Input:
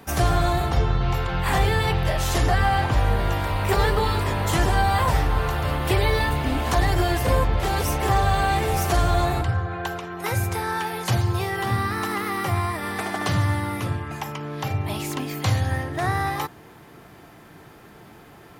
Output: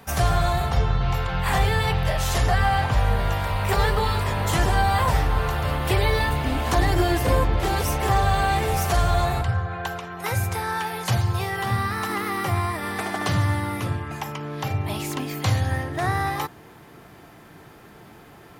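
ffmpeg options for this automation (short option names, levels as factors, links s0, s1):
-af "asetnsamples=n=441:p=0,asendcmd='4.37 equalizer g -4.5;6.72 equalizer g 5;7.75 equalizer g -4;8.74 equalizer g -11;12.09 equalizer g -0.5',equalizer=f=320:t=o:w=0.35:g=-13.5"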